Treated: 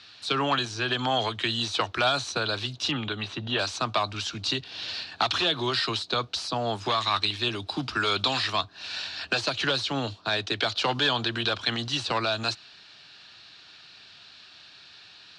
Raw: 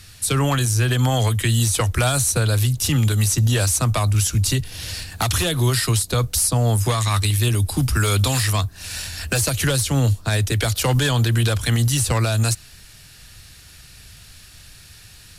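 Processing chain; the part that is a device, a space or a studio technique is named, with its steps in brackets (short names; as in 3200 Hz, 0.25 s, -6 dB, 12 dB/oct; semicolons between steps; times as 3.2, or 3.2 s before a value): 2.91–3.59 band shelf 7700 Hz -15.5 dB; phone earpiece (speaker cabinet 370–4300 Hz, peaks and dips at 500 Hz -7 dB, 2000 Hz -7 dB, 4000 Hz +4 dB)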